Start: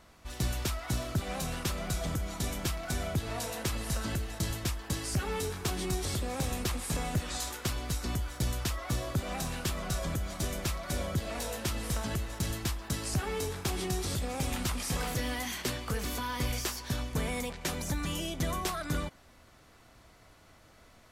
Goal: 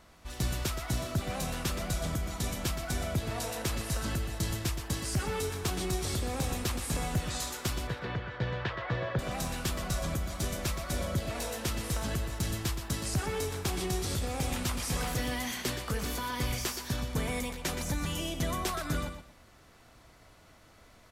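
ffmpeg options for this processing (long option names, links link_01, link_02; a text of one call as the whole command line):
ffmpeg -i in.wav -filter_complex "[0:a]asettb=1/sr,asplit=3[link_01][link_02][link_03];[link_01]atrim=end=7.874[link_04];[link_02]atrim=start=7.87:end=9.19,asetpts=PTS-STARTPTS,afade=type=in:duration=0.004:curve=qsin,afade=type=out:start_time=1.316:duration=0.004:curve=qsin,highpass=110,equalizer=frequency=120:width_type=q:width=4:gain=5,equalizer=frequency=260:width_type=q:width=4:gain=-9,equalizer=frequency=490:width_type=q:width=4:gain=9,equalizer=frequency=930:width_type=q:width=4:gain=4,equalizer=frequency=1700:width_type=q:width=4:gain=9,lowpass=frequency=3500:width=0.5412,lowpass=frequency=3500:width=1.3066[link_05];[link_03]atrim=start=9.186[link_06];[link_04][link_05]acrossfade=duration=0.004:curve1=hsin:curve2=qsin[link_07];[link_07][link_06]acrossfade=duration=0.004:curve1=qsin:curve2=hsin,aecho=1:1:121|242|363:0.355|0.071|0.0142" out.wav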